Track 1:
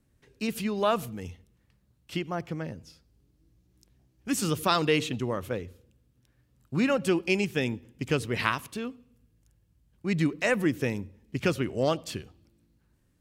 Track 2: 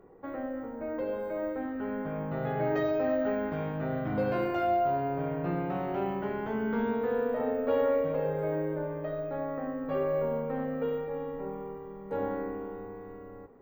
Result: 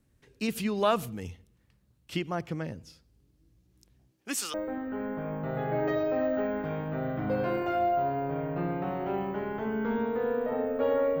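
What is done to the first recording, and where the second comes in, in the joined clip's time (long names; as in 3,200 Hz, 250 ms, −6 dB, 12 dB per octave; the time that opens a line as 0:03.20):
track 1
0:04.11–0:04.54: high-pass filter 150 Hz → 1,300 Hz
0:04.54: continue with track 2 from 0:01.42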